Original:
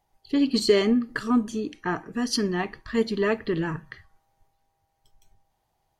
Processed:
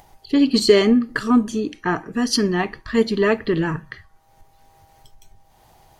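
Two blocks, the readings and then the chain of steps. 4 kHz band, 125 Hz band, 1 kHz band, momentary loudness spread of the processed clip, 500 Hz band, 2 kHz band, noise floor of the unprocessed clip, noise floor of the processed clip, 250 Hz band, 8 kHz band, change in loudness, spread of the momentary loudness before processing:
+6.0 dB, +6.0 dB, +6.0 dB, 10 LU, +6.0 dB, +6.0 dB, -74 dBFS, -56 dBFS, +6.0 dB, +6.0 dB, +6.0 dB, 10 LU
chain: upward compressor, threshold -44 dBFS; trim +6 dB

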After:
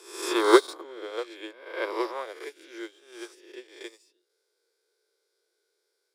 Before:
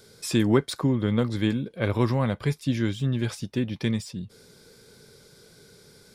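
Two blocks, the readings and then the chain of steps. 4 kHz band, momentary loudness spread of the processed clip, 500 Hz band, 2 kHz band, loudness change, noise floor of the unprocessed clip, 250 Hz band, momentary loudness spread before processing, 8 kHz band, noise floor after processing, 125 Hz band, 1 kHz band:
-0.5 dB, 24 LU, +2.0 dB, +2.0 dB, -0.5 dB, -55 dBFS, -7.0 dB, 7 LU, -1.5 dB, -78 dBFS, under -40 dB, +5.0 dB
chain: reverse spectral sustain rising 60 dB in 1.61 s; Chebyshev high-pass 340 Hz, order 6; upward expansion 2.5:1, over -38 dBFS; trim +6.5 dB

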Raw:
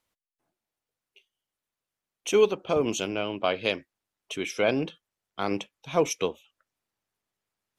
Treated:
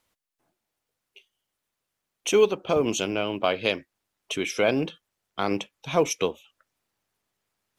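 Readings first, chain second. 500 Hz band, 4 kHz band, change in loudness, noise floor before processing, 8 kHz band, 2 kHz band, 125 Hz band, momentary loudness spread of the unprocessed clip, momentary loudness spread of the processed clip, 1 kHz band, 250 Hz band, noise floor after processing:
+1.5 dB, +2.5 dB, +2.0 dB, under -85 dBFS, +3.0 dB, +2.5 dB, +2.5 dB, 13 LU, 12 LU, +2.0 dB, +2.0 dB, -83 dBFS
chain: in parallel at 0 dB: compression, threshold -34 dBFS, peak gain reduction 17.5 dB; on the sum: short-mantissa float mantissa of 6-bit

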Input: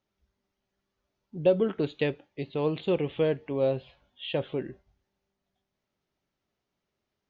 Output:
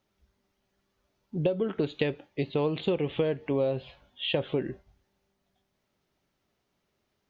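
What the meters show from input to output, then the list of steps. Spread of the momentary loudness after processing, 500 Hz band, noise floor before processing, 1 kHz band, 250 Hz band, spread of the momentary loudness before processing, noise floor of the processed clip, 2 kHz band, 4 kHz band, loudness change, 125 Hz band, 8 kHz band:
8 LU, -1.5 dB, -84 dBFS, -0.5 dB, +0.5 dB, 12 LU, -78 dBFS, +1.0 dB, +4.5 dB, -1.0 dB, +1.0 dB, no reading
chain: compression 16:1, threshold -29 dBFS, peak gain reduction 13.5 dB; trim +6 dB

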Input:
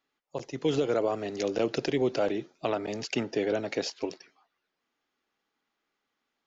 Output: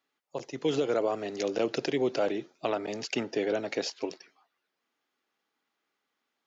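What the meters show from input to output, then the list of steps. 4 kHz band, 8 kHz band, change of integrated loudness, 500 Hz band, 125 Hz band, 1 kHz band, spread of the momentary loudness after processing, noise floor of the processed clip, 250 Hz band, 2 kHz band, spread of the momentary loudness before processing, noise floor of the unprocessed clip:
0.0 dB, no reading, -1.0 dB, -0.5 dB, -4.5 dB, 0.0 dB, 11 LU, -83 dBFS, -1.5 dB, 0.0 dB, 11 LU, -83 dBFS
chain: high-pass 190 Hz 6 dB/octave

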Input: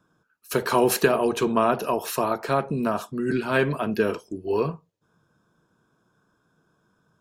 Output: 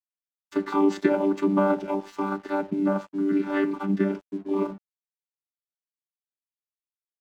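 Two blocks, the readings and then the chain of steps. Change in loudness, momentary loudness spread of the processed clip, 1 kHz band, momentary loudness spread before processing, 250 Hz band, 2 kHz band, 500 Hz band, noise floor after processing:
-1.5 dB, 9 LU, -5.0 dB, 7 LU, +3.5 dB, -6.5 dB, -3.5 dB, under -85 dBFS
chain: vocoder on a held chord bare fifth, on G3; crossover distortion -50.5 dBFS

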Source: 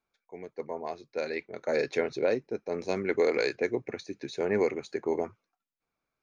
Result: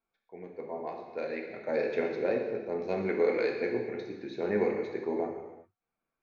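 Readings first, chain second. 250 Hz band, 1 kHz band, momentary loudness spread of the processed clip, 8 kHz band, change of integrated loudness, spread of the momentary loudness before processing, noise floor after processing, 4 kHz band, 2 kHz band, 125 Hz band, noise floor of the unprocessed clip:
0.0 dB, -1.0 dB, 12 LU, no reading, -1.0 dB, 12 LU, under -85 dBFS, -8.0 dB, -3.0 dB, -0.5 dB, under -85 dBFS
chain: Gaussian low-pass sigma 2.1 samples; gated-style reverb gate 420 ms falling, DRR 0.5 dB; trim -4 dB

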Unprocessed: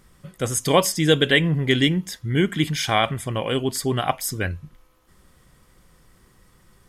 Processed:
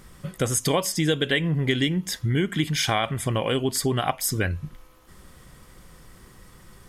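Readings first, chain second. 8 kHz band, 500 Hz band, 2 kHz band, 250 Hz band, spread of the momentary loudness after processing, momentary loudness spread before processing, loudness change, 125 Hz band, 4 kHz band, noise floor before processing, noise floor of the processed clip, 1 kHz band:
0.0 dB, -4.0 dB, -4.0 dB, -3.0 dB, 5 LU, 9 LU, -3.0 dB, -1.5 dB, -3.5 dB, -57 dBFS, -51 dBFS, -3.5 dB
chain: compression 4:1, threshold -28 dBFS, peak gain reduction 14.5 dB; trim +6.5 dB

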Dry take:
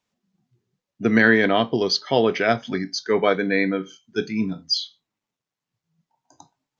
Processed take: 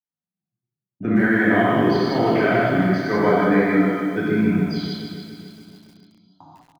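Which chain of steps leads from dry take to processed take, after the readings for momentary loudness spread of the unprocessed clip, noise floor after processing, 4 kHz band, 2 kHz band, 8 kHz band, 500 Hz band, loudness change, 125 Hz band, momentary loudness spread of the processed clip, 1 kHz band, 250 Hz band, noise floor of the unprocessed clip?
11 LU, under -85 dBFS, -8.5 dB, 0.0 dB, no reading, +1.0 dB, +2.5 dB, +8.0 dB, 13 LU, +4.0 dB, +5.0 dB, under -85 dBFS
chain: gate -47 dBFS, range -28 dB; low-pass 1.5 kHz 12 dB/octave; peaking EQ 460 Hz -12 dB 0.25 oct; peak limiter -17 dBFS, peak gain reduction 10 dB; on a send: feedback delay 280 ms, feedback 54%, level -10 dB; on the sum: gated-style reverb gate 230 ms flat, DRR -7 dB; bit-crushed delay 153 ms, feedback 35%, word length 8-bit, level -7.5 dB; trim +1.5 dB

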